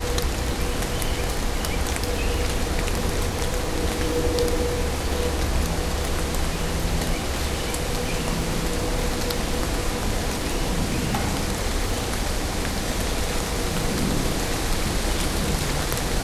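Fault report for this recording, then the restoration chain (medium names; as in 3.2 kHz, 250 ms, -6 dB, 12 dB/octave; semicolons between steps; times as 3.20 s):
crackle 39 per s -31 dBFS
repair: de-click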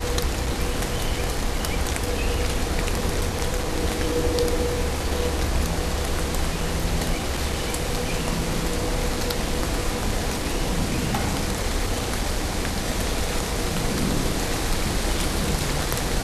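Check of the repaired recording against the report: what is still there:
nothing left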